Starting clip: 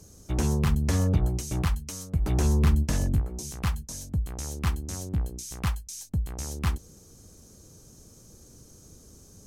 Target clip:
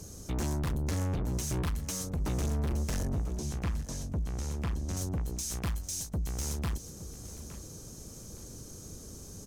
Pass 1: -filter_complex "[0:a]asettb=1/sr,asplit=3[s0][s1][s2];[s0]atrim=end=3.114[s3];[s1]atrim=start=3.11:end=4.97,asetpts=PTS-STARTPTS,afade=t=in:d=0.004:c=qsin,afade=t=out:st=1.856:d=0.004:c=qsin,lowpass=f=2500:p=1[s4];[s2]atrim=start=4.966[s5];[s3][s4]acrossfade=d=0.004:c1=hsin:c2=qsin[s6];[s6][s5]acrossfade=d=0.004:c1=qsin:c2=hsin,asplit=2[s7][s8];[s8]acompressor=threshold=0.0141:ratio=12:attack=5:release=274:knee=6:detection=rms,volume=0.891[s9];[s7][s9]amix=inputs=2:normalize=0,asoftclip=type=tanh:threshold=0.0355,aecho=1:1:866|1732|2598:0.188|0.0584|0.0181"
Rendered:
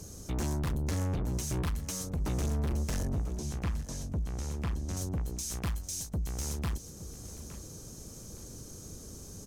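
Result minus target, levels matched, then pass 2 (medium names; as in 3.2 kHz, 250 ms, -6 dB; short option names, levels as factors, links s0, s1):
compression: peak gain reduction +6.5 dB
-filter_complex "[0:a]asettb=1/sr,asplit=3[s0][s1][s2];[s0]atrim=end=3.114[s3];[s1]atrim=start=3.11:end=4.97,asetpts=PTS-STARTPTS,afade=t=in:d=0.004:c=qsin,afade=t=out:st=1.856:d=0.004:c=qsin,lowpass=f=2500:p=1[s4];[s2]atrim=start=4.966[s5];[s3][s4]acrossfade=d=0.004:c1=hsin:c2=qsin[s6];[s6][s5]acrossfade=d=0.004:c1=qsin:c2=hsin,asplit=2[s7][s8];[s8]acompressor=threshold=0.0316:ratio=12:attack=5:release=274:knee=6:detection=rms,volume=0.891[s9];[s7][s9]amix=inputs=2:normalize=0,asoftclip=type=tanh:threshold=0.0355,aecho=1:1:866|1732|2598:0.188|0.0584|0.0181"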